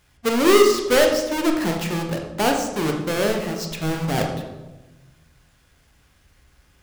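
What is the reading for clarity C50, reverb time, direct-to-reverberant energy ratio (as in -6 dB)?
5.0 dB, 1.1 s, 2.0 dB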